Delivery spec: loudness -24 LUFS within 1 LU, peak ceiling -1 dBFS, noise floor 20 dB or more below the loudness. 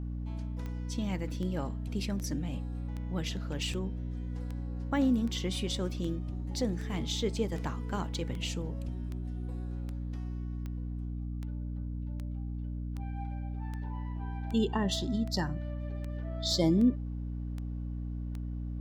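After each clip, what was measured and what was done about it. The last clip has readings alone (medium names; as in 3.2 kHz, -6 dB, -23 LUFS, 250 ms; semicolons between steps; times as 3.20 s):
clicks found 24; hum 60 Hz; highest harmonic 300 Hz; hum level -34 dBFS; loudness -34.5 LUFS; peak level -16.0 dBFS; loudness target -24.0 LUFS
-> de-click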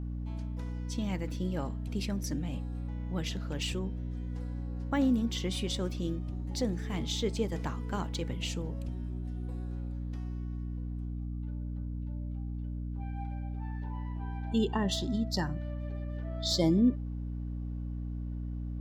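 clicks found 0; hum 60 Hz; highest harmonic 300 Hz; hum level -34 dBFS
-> de-hum 60 Hz, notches 5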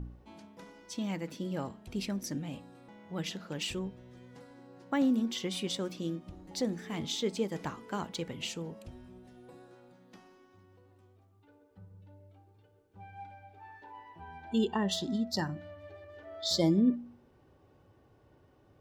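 hum not found; loudness -34.0 LUFS; peak level -16.5 dBFS; loudness target -24.0 LUFS
-> trim +10 dB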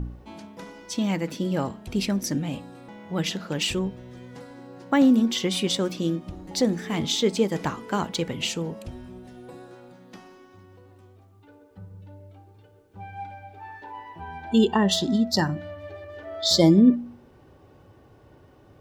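loudness -24.0 LUFS; peak level -6.5 dBFS; noise floor -54 dBFS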